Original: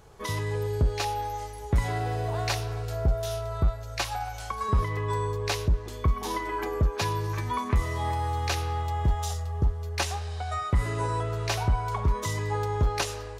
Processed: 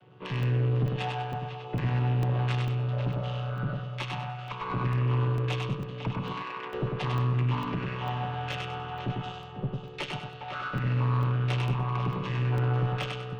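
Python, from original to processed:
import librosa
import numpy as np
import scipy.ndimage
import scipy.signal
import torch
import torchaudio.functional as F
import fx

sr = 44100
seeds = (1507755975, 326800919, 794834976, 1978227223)

y = fx.chord_vocoder(x, sr, chord='minor triad', root=47)
y = fx.lowpass_res(y, sr, hz=3000.0, q=4.7)
y = y + 10.0 ** (-10.5 / 20.0) * np.pad(y, (int(499 * sr / 1000.0), 0))[:len(y)]
y = fx.tube_stage(y, sr, drive_db=28.0, bias=0.55)
y = fx.highpass(y, sr, hz=880.0, slope=6, at=(6.32, 6.72), fade=0.02)
y = fx.echo_feedback(y, sr, ms=98, feedback_pct=31, wet_db=-3.5)
y = fx.buffer_crackle(y, sr, first_s=0.43, period_s=0.45, block=64, kind='zero')
y = F.gain(torch.from_numpy(y), 3.5).numpy()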